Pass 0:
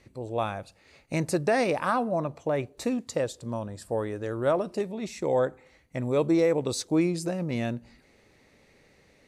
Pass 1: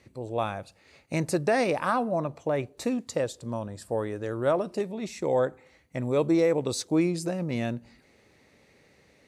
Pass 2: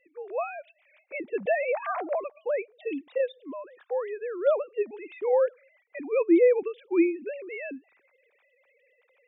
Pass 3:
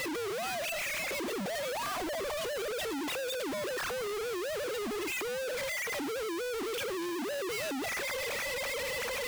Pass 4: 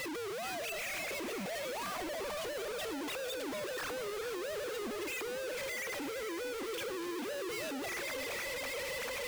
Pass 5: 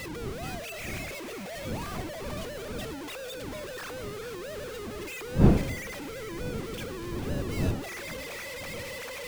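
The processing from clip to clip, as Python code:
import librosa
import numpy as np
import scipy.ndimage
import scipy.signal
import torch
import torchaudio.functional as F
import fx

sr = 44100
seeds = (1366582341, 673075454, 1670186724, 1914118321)

y1 = scipy.signal.sosfilt(scipy.signal.butter(2, 58.0, 'highpass', fs=sr, output='sos'), x)
y2 = fx.sine_speech(y1, sr)
y2 = fx.peak_eq(y2, sr, hz=2400.0, db=6.0, octaves=0.41)
y3 = np.sign(y2) * np.sqrt(np.mean(np.square(y2)))
y3 = y3 * 10.0 ** (-6.0 / 20.0)
y4 = fx.echo_feedback(y3, sr, ms=446, feedback_pct=53, wet_db=-10.0)
y4 = y4 * 10.0 ** (-4.5 / 20.0)
y5 = fx.dmg_wind(y4, sr, seeds[0], corner_hz=230.0, level_db=-33.0)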